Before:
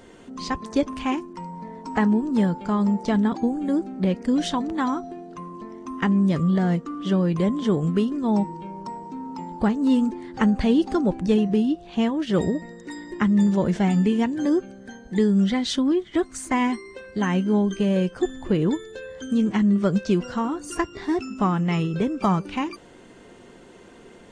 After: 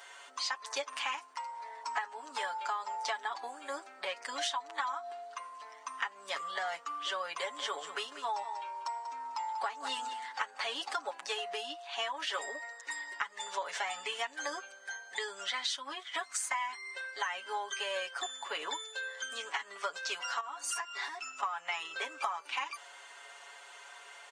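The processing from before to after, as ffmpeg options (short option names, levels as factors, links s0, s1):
-filter_complex "[0:a]asettb=1/sr,asplit=3[s0][s1][s2];[s0]atrim=end=7.394[s3];[s1]atrim=start=7.39:end=10.74,asetpts=PTS-STARTPTS,afade=t=in:d=0.004:c=qsin,afade=t=out:st=3.346:d=0.004:c=qsin,aecho=1:1:190:0.224,atrim=end_sample=147735[s4];[s2]atrim=start=10.736[s5];[s3][s4]acrossfade=d=0.004:c1=hsin:c2=qsin[s6];[s6][s5]acrossfade=d=0.004:c1=qsin:c2=hsin,asettb=1/sr,asplit=3[s7][s8][s9];[s7]atrim=end=20.404[s10];[s8]atrim=start=20.4:end=21.43,asetpts=PTS-STARTPTS,afade=t=in:d=0.004:c=qsin,afade=t=out:st=1.026:d=0.004:c=qsin,acompressor=threshold=0.0282:ratio=6:attack=3.2:release=140:knee=1:detection=peak[s11];[s9]atrim=start=21.426[s12];[s10][s11]acrossfade=d=0.004:c1=hsin:c2=qsin[s13];[s13][s12]acrossfade=d=0.004:c1=qsin:c2=hsin,highpass=f=840:w=0.5412,highpass=f=840:w=1.3066,aecho=1:1:7.1:0.85,acompressor=threshold=0.0224:ratio=12,volume=1.19"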